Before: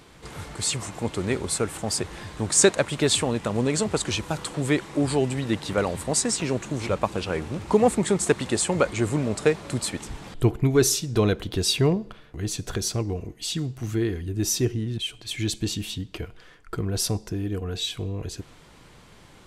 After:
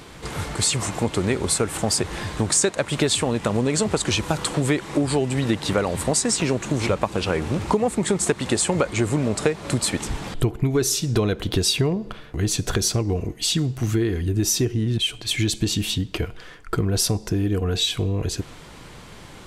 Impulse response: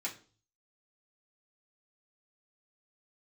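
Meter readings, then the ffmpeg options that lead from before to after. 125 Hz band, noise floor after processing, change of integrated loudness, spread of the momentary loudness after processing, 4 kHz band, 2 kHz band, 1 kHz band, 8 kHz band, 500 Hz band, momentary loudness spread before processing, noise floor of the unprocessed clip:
+4.0 dB, -42 dBFS, +2.5 dB, 8 LU, +4.5 dB, +2.5 dB, +2.5 dB, +3.0 dB, +1.0 dB, 11 LU, -51 dBFS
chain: -af "acompressor=threshold=-26dB:ratio=6,volume=8.5dB"

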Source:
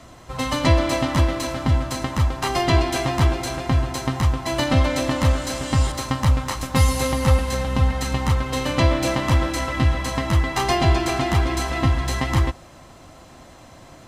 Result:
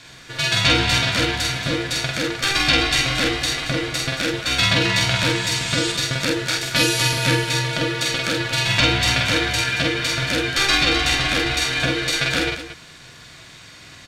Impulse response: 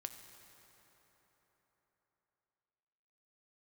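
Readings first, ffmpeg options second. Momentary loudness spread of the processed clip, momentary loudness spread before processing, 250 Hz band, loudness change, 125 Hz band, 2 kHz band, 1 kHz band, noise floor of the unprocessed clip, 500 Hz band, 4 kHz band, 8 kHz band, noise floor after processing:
6 LU, 5 LU, -1.5 dB, +2.5 dB, -5.0 dB, +9.0 dB, -2.0 dB, -45 dBFS, -1.0 dB, +11.0 dB, +6.5 dB, -43 dBFS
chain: -af "aeval=exprs='val(0)*sin(2*PI*400*n/s)':c=same,equalizer=f=125:t=o:w=1:g=5,equalizer=f=250:t=o:w=1:g=-6,equalizer=f=500:t=o:w=1:g=-8,equalizer=f=1k:t=o:w=1:g=-6,equalizer=f=2k:t=o:w=1:g=8,equalizer=f=4k:t=o:w=1:g=10,equalizer=f=8k:t=o:w=1:g=3,aecho=1:1:46.65|227.4:0.794|0.282,volume=1.5dB"

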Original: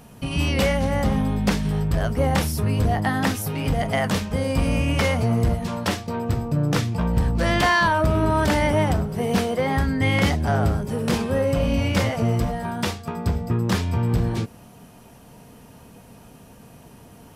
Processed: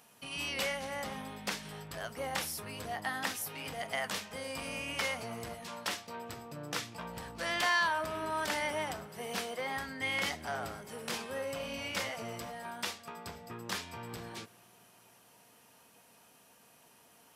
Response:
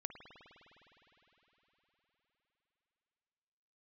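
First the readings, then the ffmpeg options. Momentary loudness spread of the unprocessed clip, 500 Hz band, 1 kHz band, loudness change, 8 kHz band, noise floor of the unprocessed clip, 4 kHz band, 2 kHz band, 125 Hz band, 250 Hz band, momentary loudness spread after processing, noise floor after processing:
6 LU, -15.5 dB, -12.0 dB, -14.5 dB, -7.0 dB, -47 dBFS, -7.5 dB, -8.5 dB, -28.0 dB, -22.0 dB, 11 LU, -62 dBFS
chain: -filter_complex "[0:a]highpass=f=1.4k:p=1,asplit=2[a][b];[1:a]atrim=start_sample=2205[c];[b][c]afir=irnorm=-1:irlink=0,volume=-12dB[d];[a][d]amix=inputs=2:normalize=0,volume=-8dB"

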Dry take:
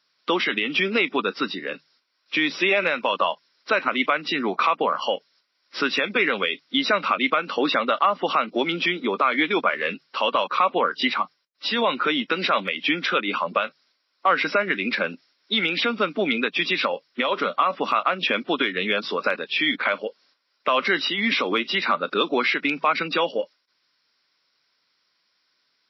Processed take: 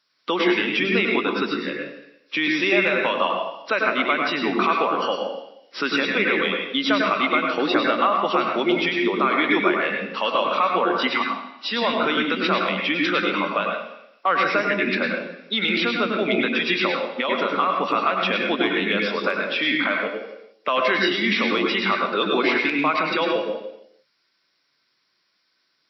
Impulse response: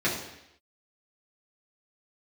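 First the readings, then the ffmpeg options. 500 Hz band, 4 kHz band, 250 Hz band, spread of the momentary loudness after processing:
+2.0 dB, 0.0 dB, +4.0 dB, 8 LU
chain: -filter_complex "[0:a]asplit=2[a][b];[1:a]atrim=start_sample=2205,adelay=95[c];[b][c]afir=irnorm=-1:irlink=0,volume=-12.5dB[d];[a][d]amix=inputs=2:normalize=0,volume=-1.5dB"

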